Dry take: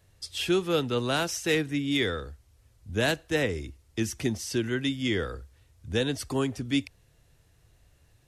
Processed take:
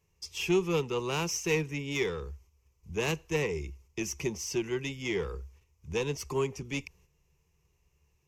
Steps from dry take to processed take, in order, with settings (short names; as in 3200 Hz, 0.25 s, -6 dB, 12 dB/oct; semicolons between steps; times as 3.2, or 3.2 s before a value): one diode to ground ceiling -22 dBFS; gate -57 dBFS, range -7 dB; ripple EQ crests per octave 0.77, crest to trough 13 dB; gain -4 dB